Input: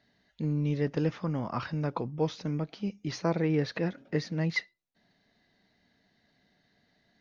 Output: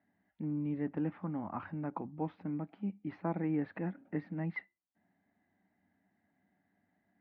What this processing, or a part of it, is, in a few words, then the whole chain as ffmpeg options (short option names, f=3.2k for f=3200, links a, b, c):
bass cabinet: -af "highpass=81,equalizer=f=94:t=q:w=4:g=9,equalizer=f=130:t=q:w=4:g=-9,equalizer=f=190:t=q:w=4:g=6,equalizer=f=290:t=q:w=4:g=7,equalizer=f=470:t=q:w=4:g=-6,equalizer=f=810:t=q:w=4:g=7,lowpass=f=2.2k:w=0.5412,lowpass=f=2.2k:w=1.3066,volume=-8.5dB"